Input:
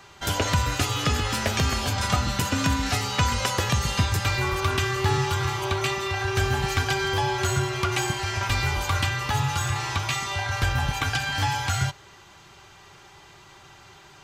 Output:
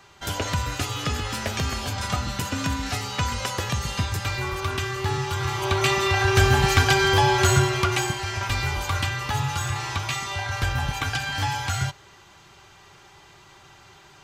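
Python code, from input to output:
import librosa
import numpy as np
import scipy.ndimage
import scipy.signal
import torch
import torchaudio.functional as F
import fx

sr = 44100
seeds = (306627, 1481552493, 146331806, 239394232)

y = fx.gain(x, sr, db=fx.line((5.25, -3.0), (5.98, 6.0), (7.56, 6.0), (8.2, -1.0)))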